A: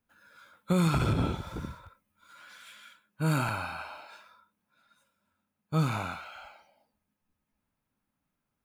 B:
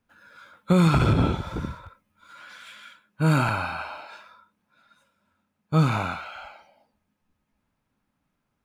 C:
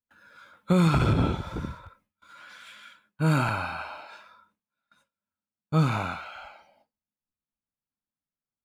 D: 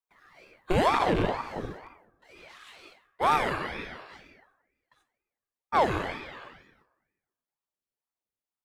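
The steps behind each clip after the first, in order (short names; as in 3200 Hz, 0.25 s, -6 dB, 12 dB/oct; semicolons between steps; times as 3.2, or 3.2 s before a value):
high shelf 8000 Hz -11.5 dB; gain +7 dB
gate with hold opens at -51 dBFS; gain -2.5 dB
rattling part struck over -23 dBFS, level -24 dBFS; FDN reverb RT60 1.2 s, low-frequency decay 0.85×, high-frequency decay 0.45×, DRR 10 dB; ring modulator with a swept carrier 630 Hz, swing 70%, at 2.1 Hz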